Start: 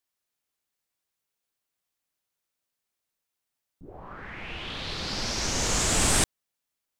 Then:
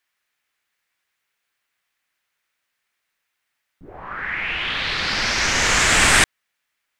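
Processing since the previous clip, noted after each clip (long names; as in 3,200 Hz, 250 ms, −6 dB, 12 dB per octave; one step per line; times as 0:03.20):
parametric band 1,900 Hz +15 dB 1.8 octaves
level +2.5 dB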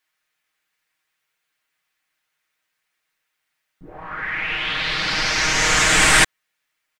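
comb filter 6.4 ms
level −1 dB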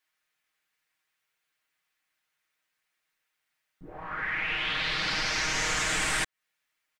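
downward compressor 6 to 1, threshold −21 dBFS, peak gain reduction 11 dB
level −4.5 dB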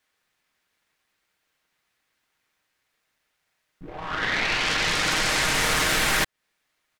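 short delay modulated by noise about 1,400 Hz, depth 0.045 ms
level +6 dB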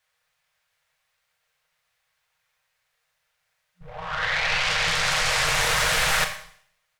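four-comb reverb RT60 0.6 s, combs from 28 ms, DRR 6.5 dB
brick-wall band-stop 180–450 Hz
highs frequency-modulated by the lows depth 0.37 ms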